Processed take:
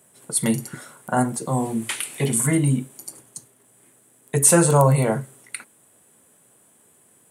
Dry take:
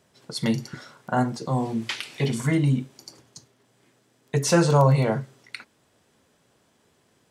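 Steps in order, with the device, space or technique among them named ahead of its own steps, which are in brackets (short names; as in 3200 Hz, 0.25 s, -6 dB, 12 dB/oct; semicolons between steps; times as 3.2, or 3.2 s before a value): budget condenser microphone (HPF 110 Hz; resonant high shelf 7000 Hz +11.5 dB, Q 3); gain +2.5 dB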